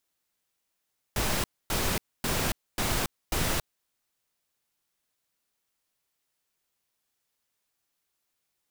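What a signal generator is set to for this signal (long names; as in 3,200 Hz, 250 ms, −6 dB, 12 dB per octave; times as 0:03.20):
noise bursts pink, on 0.28 s, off 0.26 s, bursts 5, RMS −27.5 dBFS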